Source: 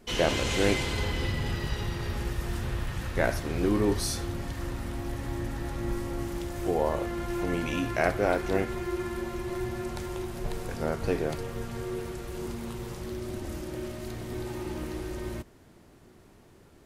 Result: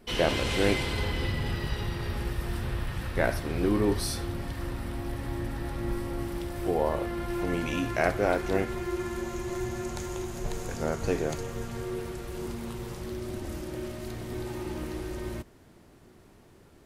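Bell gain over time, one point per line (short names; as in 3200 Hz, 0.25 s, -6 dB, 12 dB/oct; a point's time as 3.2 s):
bell 6700 Hz 0.31 oct
7.24 s -8.5 dB
7.7 s +0.5 dB
8.78 s +0.5 dB
9.35 s +10.5 dB
11.37 s +10.5 dB
11.92 s -1 dB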